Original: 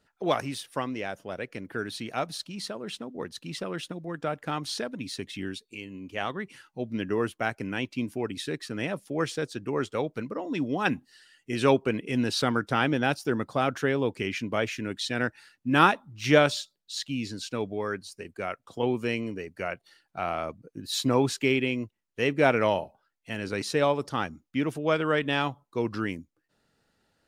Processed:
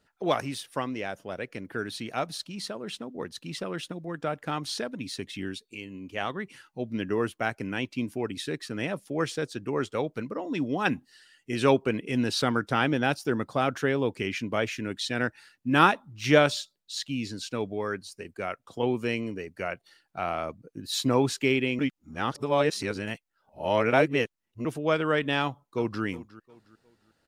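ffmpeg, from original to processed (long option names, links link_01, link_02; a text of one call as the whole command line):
ffmpeg -i in.wav -filter_complex "[0:a]asplit=2[link_01][link_02];[link_02]afade=type=in:start_time=25.41:duration=0.01,afade=type=out:start_time=26.03:duration=0.01,aecho=0:1:360|720|1080:0.125893|0.0440624|0.0154218[link_03];[link_01][link_03]amix=inputs=2:normalize=0,asplit=3[link_04][link_05][link_06];[link_04]atrim=end=21.792[link_07];[link_05]atrim=start=21.788:end=24.652,asetpts=PTS-STARTPTS,areverse[link_08];[link_06]atrim=start=24.648[link_09];[link_07][link_08]acrossfade=duration=0.004:curve1=hsin:curve2=hsin[link_10];[link_10][link_09]acrossfade=duration=0.004:curve1=hsin:curve2=hsin" out.wav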